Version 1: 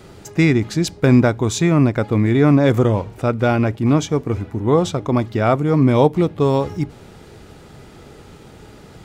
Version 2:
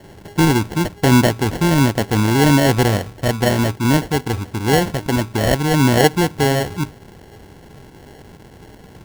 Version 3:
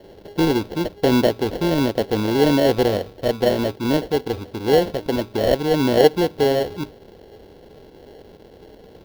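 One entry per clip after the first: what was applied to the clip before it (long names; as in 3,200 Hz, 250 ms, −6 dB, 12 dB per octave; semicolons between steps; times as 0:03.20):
decimation without filtering 36×
octave-band graphic EQ 125/500/1,000/2,000/4,000/8,000 Hz −7/+10/−4/−4/+6/−11 dB; level −5 dB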